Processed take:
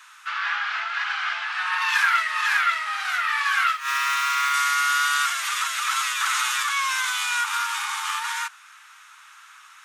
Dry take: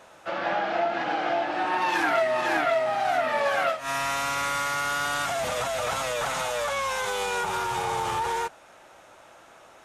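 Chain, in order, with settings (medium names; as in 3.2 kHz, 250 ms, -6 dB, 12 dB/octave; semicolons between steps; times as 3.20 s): 3.73–4.54 s: median filter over 5 samples; steep high-pass 1.1 kHz 48 dB/octave; 6.20–6.63 s: level flattener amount 50%; trim +7 dB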